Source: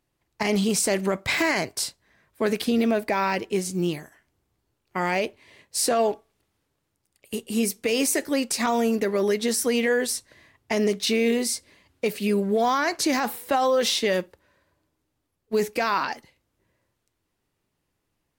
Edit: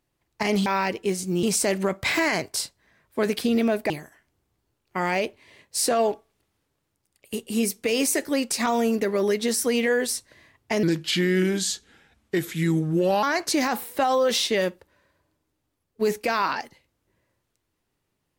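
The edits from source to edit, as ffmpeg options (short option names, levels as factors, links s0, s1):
-filter_complex "[0:a]asplit=6[s0][s1][s2][s3][s4][s5];[s0]atrim=end=0.662[s6];[s1]atrim=start=3.128:end=3.902[s7];[s2]atrim=start=0.658:end=3.132[s8];[s3]atrim=start=3.898:end=10.834[s9];[s4]atrim=start=10.83:end=12.75,asetpts=PTS-STARTPTS,asetrate=35280,aresample=44100[s10];[s5]atrim=start=12.746[s11];[s6][s7]acrossfade=d=0.004:c1=hsin:c2=hsin[s12];[s12][s8]acrossfade=d=0.004:c1=hsin:c2=hsin[s13];[s13][s9]acrossfade=d=0.004:c1=hsin:c2=hsin[s14];[s14][s10]acrossfade=d=0.004:c1=hsin:c2=hsin[s15];[s15][s11]acrossfade=d=0.004:c1=hsin:c2=hsin"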